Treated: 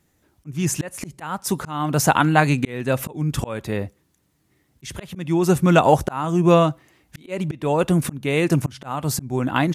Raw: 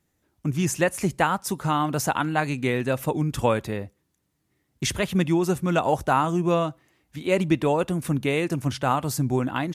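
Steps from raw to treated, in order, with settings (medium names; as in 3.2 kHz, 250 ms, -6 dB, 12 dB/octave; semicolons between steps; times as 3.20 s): dynamic bell 150 Hz, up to +3 dB, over -35 dBFS, Q 4; slow attack 416 ms; trim +7.5 dB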